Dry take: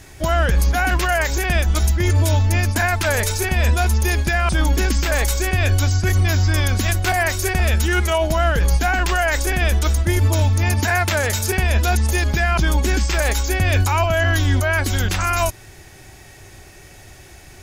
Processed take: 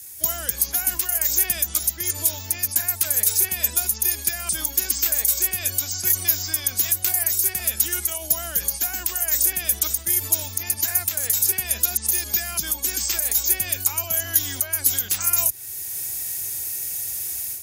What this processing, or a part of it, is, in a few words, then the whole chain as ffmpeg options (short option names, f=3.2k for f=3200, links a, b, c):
FM broadcast chain: -filter_complex "[0:a]highpass=f=55:w=0.5412,highpass=f=55:w=1.3066,dynaudnorm=f=170:g=3:m=11.5dB,acrossover=split=180|370|4600[a][b][c][d];[a]acompressor=threshold=-23dB:ratio=4[e];[b]acompressor=threshold=-26dB:ratio=4[f];[c]acompressor=threshold=-19dB:ratio=4[g];[d]acompressor=threshold=-29dB:ratio=4[h];[e][f][g][h]amix=inputs=4:normalize=0,aemphasis=mode=production:type=75fm,alimiter=limit=-1.5dB:level=0:latency=1:release=323,asoftclip=type=hard:threshold=-3dB,lowpass=f=15k:w=0.5412,lowpass=f=15k:w=1.3066,aemphasis=mode=production:type=75fm,volume=-16.5dB"